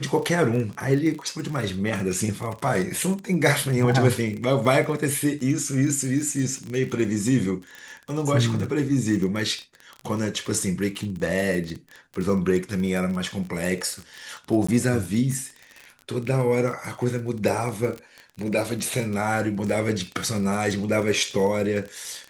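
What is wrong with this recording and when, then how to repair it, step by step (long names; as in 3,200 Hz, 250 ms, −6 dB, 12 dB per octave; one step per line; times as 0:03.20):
surface crackle 29 per second −28 dBFS
0:14.67–0:14.69: drop-out 15 ms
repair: click removal
repair the gap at 0:14.67, 15 ms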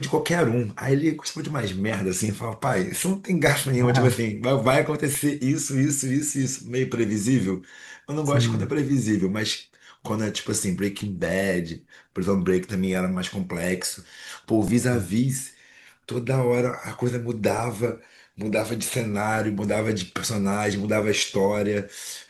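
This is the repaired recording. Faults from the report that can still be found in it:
none of them is left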